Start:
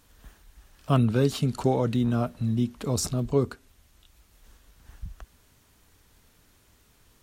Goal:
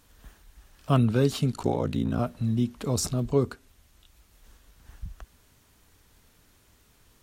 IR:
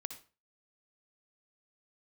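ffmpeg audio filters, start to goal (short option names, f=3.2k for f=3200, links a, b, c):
-filter_complex "[0:a]asettb=1/sr,asplit=3[a][b][c];[a]atrim=end=1.514[d];[b]atrim=start=1.51:end=2.19,asetpts=PTS-STARTPTS,afade=t=in:d=0.004:c=qsin,afade=t=out:st=0.676:d=0.004:c=qsin,aeval=exprs='val(0)*sin(2*PI*28*n/s)':c=same[e];[c]atrim=start=2.186[f];[d][e]acrossfade=d=0.004:c1=hsin:c2=qsin[g];[g][f]acrossfade=d=0.004:c1=qsin:c2=hsin"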